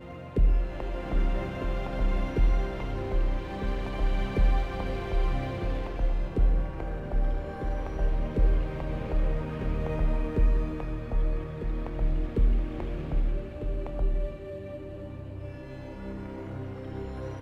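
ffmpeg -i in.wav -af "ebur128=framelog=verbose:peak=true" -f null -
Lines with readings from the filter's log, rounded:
Integrated loudness:
  I:         -31.7 LUFS
  Threshold: -41.7 LUFS
Loudness range:
  LRA:         5.4 LU
  Threshold: -51.6 LUFS
  LRA low:   -35.7 LUFS
  LRA high:  -30.4 LUFS
True peak:
  Peak:      -12.5 dBFS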